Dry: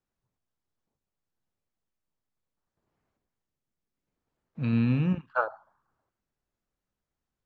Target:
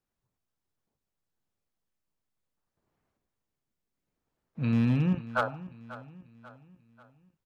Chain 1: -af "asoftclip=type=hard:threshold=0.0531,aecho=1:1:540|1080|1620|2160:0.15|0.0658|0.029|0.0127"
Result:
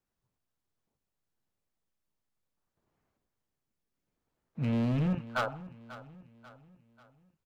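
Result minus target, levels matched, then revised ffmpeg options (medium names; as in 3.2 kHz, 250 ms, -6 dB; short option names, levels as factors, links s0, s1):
hard clipper: distortion +12 dB
-af "asoftclip=type=hard:threshold=0.112,aecho=1:1:540|1080|1620|2160:0.15|0.0658|0.029|0.0127"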